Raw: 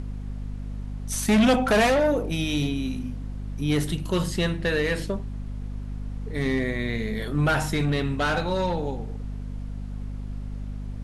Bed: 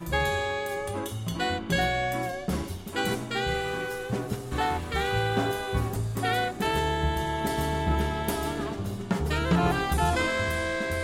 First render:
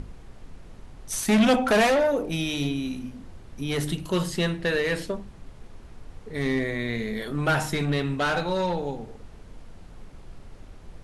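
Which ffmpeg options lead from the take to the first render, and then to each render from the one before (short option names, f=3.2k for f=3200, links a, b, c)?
-af "bandreject=f=50:t=h:w=6,bandreject=f=100:t=h:w=6,bandreject=f=150:t=h:w=6,bandreject=f=200:t=h:w=6,bandreject=f=250:t=h:w=6,bandreject=f=300:t=h:w=6"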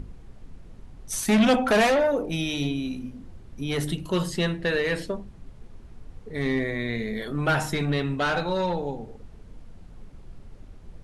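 -af "afftdn=nr=6:nf=-46"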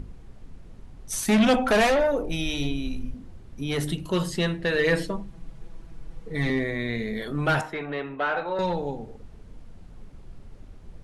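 -filter_complex "[0:a]asettb=1/sr,asplit=3[a][b][c];[a]atrim=end=1.314[d];[b]atrim=start=1.31:end=3.14,asetpts=PTS-STARTPTS,afade=t=in:d=0.004:c=qsin,afade=t=out:st=1.826:d=0.004:c=qsin,asubboost=boost=10.5:cutoff=69[e];[c]atrim=start=3.136[f];[d][e]acrossfade=d=0.004:c1=hsin:c2=qsin[g];[g][f]acrossfade=d=0.004:c1=qsin:c2=hsin,asettb=1/sr,asplit=3[h][i][j];[h]atrim=end=4.784[k];[i]atrim=start=4.78:end=6.5,asetpts=PTS-STARTPTS,afade=t=in:d=0.004:c=qsin,afade=t=out:st=1.716:d=0.004:c=qsin,aecho=1:1:6.1:0.86,atrim=end_sample=75852[l];[j]atrim=start=6.496[m];[k][l]acrossfade=d=0.004:c1=hsin:c2=qsin[n];[n][m]acrossfade=d=0.004:c1=qsin:c2=hsin,asettb=1/sr,asplit=3[o][p][q];[o]atrim=end=7.614[r];[p]atrim=start=7.61:end=8.59,asetpts=PTS-STARTPTS,afade=t=in:d=0.004:c=qsin,afade=t=out:st=0.976:d=0.004:c=qsin,acrossover=split=340 2800:gain=0.158 1 0.0708[s][t][u];[s][t][u]amix=inputs=3:normalize=0[v];[q]atrim=start=8.586[w];[r][v]acrossfade=d=0.004:c1=hsin:c2=qsin[x];[x][w]acrossfade=d=0.004:c1=qsin:c2=hsin"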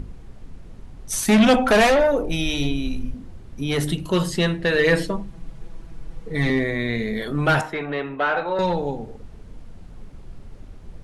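-af "volume=4.5dB"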